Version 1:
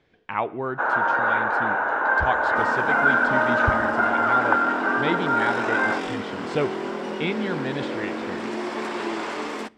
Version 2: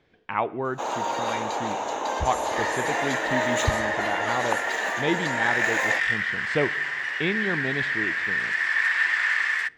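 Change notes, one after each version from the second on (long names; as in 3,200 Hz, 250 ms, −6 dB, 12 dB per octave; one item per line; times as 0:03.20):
first sound: remove low-pass with resonance 1,500 Hz, resonance Q 15
second sound: add high-pass with resonance 1,800 Hz, resonance Q 12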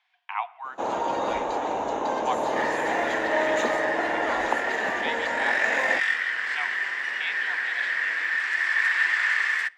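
speech: add Chebyshev high-pass with heavy ripple 700 Hz, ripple 6 dB
first sound: add spectral tilt −3 dB per octave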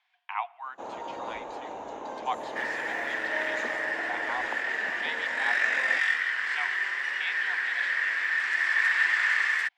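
first sound −10.0 dB
reverb: off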